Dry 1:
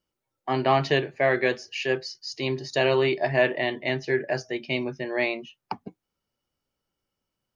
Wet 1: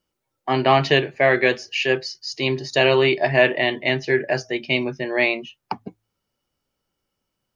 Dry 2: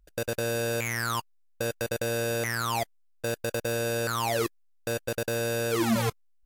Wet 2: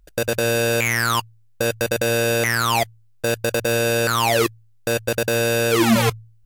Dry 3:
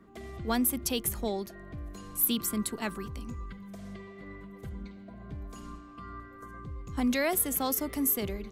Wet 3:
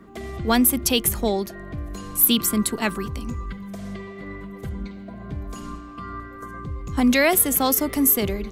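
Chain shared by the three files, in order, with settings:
de-hum 55.33 Hz, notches 2; dynamic bell 2.7 kHz, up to +4 dB, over -40 dBFS, Q 1.5; normalise loudness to -20 LUFS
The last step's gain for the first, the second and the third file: +4.5 dB, +9.0 dB, +9.5 dB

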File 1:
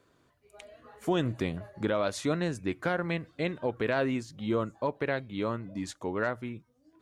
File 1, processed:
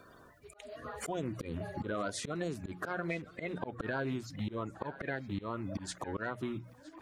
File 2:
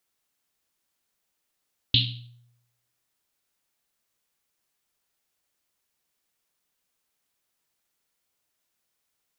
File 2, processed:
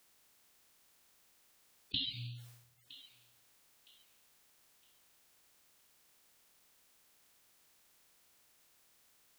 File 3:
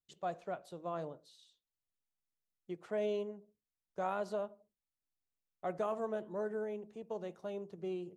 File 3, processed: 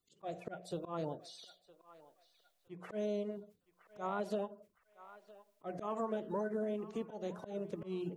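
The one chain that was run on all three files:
coarse spectral quantiser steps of 30 dB; hum notches 60/120/180 Hz; slow attack 277 ms; compression 6:1, threshold -44 dBFS; band-passed feedback delay 963 ms, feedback 44%, band-pass 1.6 kHz, level -14.5 dB; trim +10 dB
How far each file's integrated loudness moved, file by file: -7.0 LU, -17.0 LU, -0.5 LU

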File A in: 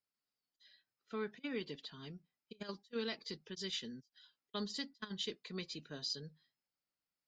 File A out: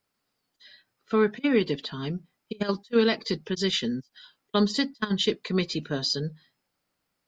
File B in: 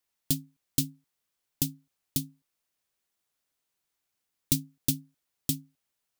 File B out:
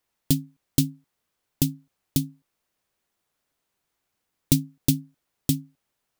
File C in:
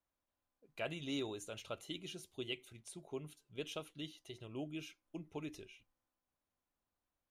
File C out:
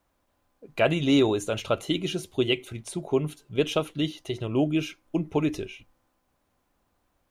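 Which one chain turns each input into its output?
treble shelf 2.2 kHz -8 dB; normalise loudness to -27 LUFS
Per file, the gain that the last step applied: +19.0 dB, +9.0 dB, +20.5 dB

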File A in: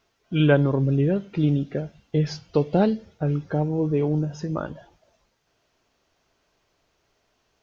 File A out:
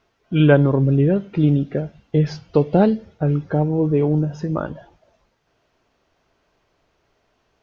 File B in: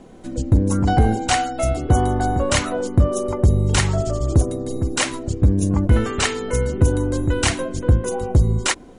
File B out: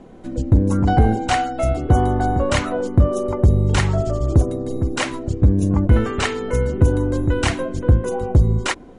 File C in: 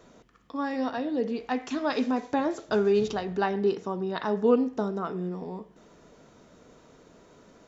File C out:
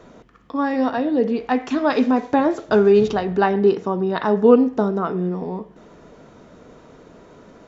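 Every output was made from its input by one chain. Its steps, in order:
treble shelf 4.3 kHz -11.5 dB; normalise loudness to -19 LUFS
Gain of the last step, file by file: +5.0 dB, +1.0 dB, +9.5 dB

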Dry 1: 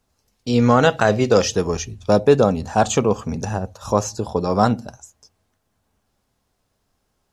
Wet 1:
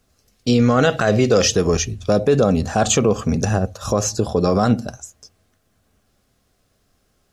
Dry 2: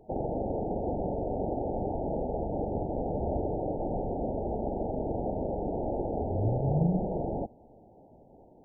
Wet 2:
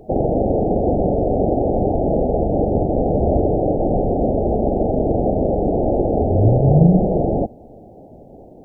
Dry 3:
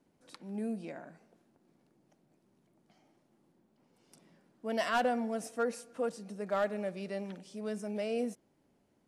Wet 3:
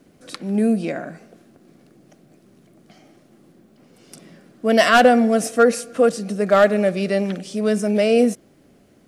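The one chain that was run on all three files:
peaking EQ 910 Hz -14.5 dB 0.21 oct; peak limiter -12.5 dBFS; normalise loudness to -18 LUFS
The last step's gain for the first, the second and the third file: +6.5 dB, +14.5 dB, +18.5 dB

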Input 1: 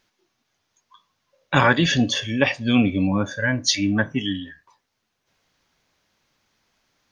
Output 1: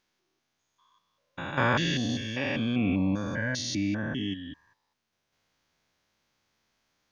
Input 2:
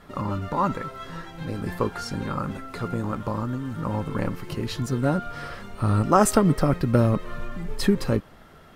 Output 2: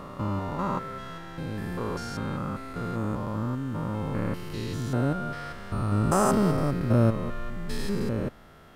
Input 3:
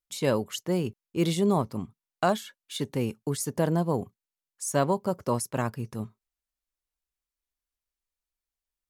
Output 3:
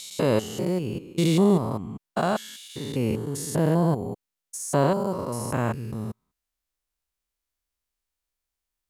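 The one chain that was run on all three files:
spectrogram pixelated in time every 200 ms; peak normalisation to -9 dBFS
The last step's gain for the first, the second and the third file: -5.0 dB, -0.5 dB, +6.0 dB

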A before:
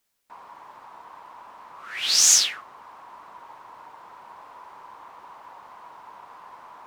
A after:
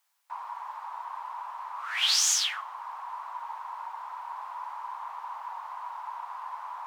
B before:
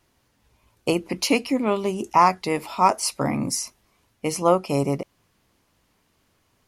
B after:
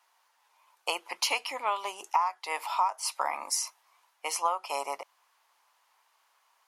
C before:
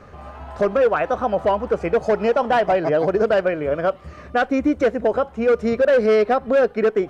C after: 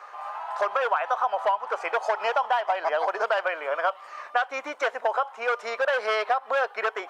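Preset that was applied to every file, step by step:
dynamic bell 3.2 kHz, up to +6 dB, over -49 dBFS, Q 6.3; ladder high-pass 780 Hz, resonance 50%; compression 20:1, threshold -30 dBFS; peak normalisation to -12 dBFS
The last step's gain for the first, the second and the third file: +9.5 dB, +7.0 dB, +10.0 dB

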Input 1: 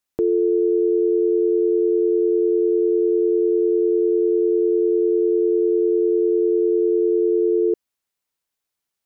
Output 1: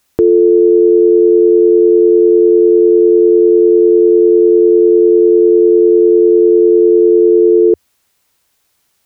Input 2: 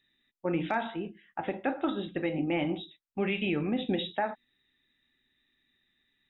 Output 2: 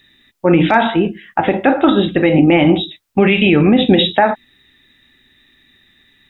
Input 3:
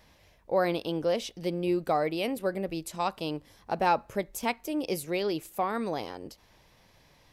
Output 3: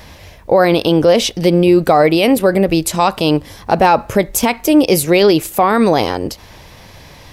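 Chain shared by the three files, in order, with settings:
peaking EQ 83 Hz +5.5 dB 0.74 oct; peak limiter -23 dBFS; peak normalisation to -2 dBFS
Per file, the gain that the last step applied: +21.0 dB, +21.0 dB, +21.0 dB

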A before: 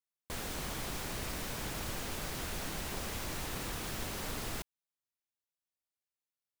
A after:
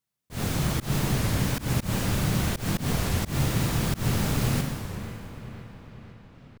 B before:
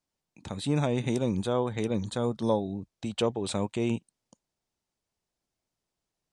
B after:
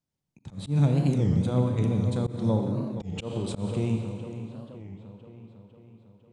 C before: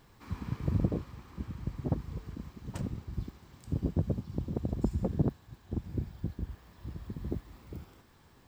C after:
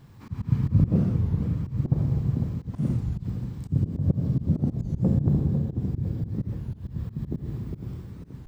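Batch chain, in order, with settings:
peaking EQ 130 Hz +15 dB 1.7 oct; feedback echo behind a low-pass 502 ms, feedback 58%, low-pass 2.6 kHz, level -11.5 dB; Schroeder reverb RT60 2.1 s, combs from 28 ms, DRR 3.5 dB; slow attack 128 ms; warped record 33 1/3 rpm, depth 250 cents; normalise loudness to -27 LUFS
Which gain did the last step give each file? +6.5 dB, -6.5 dB, +0.5 dB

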